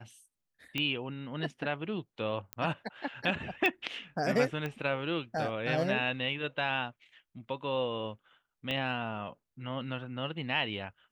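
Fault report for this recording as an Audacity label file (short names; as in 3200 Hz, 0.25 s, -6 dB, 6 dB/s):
0.780000	0.780000	pop -18 dBFS
2.530000	2.530000	pop -19 dBFS
3.660000	3.660000	pop -16 dBFS
4.660000	4.660000	pop -23 dBFS
8.710000	8.710000	pop -21 dBFS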